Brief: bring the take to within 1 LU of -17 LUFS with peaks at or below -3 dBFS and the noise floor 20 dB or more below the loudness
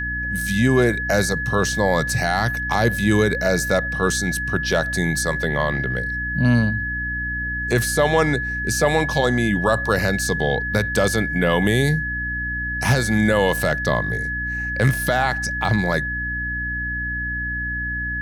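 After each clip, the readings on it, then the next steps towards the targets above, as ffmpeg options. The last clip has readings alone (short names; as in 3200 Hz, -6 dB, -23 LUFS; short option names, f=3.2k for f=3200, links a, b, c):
hum 60 Hz; harmonics up to 300 Hz; hum level -28 dBFS; steady tone 1700 Hz; tone level -24 dBFS; loudness -20.5 LUFS; peak -4.5 dBFS; loudness target -17.0 LUFS
-> -af "bandreject=f=60:t=h:w=4,bandreject=f=120:t=h:w=4,bandreject=f=180:t=h:w=4,bandreject=f=240:t=h:w=4,bandreject=f=300:t=h:w=4"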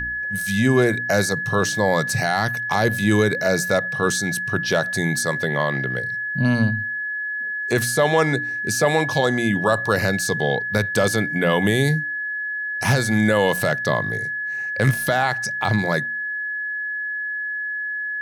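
hum none; steady tone 1700 Hz; tone level -24 dBFS
-> -af "bandreject=f=1.7k:w=30"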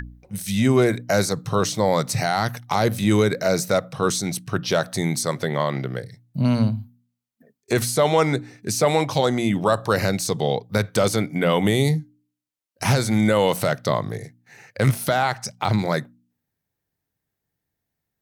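steady tone none; loudness -22.0 LUFS; peak -5.5 dBFS; loudness target -17.0 LUFS
-> -af "volume=5dB,alimiter=limit=-3dB:level=0:latency=1"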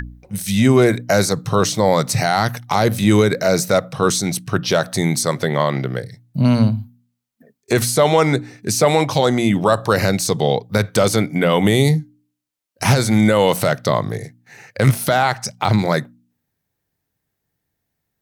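loudness -17.5 LUFS; peak -3.0 dBFS; noise floor -77 dBFS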